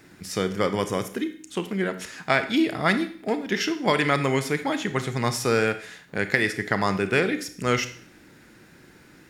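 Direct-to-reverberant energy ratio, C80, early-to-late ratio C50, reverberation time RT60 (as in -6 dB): 9.5 dB, 16.0 dB, 12.5 dB, 0.50 s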